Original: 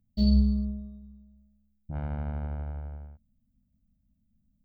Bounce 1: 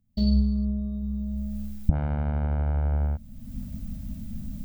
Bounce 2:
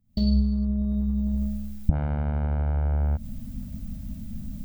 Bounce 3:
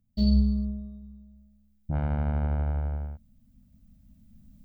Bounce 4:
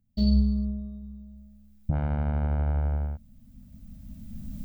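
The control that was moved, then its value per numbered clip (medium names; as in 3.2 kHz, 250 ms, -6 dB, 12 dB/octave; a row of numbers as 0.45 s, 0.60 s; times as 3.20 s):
recorder AGC, rising by: 33 dB/s, 86 dB/s, 5.2 dB/s, 13 dB/s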